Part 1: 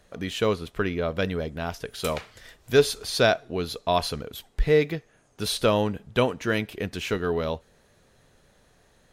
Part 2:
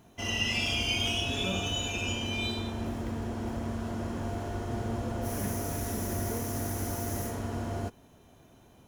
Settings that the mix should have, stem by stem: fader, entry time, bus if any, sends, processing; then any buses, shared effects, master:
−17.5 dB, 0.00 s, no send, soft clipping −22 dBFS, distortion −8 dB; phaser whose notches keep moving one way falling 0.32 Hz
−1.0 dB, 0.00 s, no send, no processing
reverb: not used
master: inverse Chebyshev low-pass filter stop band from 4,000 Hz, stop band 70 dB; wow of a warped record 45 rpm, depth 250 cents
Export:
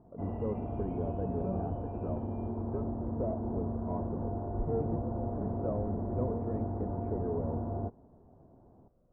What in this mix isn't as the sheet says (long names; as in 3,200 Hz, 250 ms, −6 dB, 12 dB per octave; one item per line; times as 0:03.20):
stem 1 −17.5 dB → −6.5 dB
master: missing wow of a warped record 45 rpm, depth 250 cents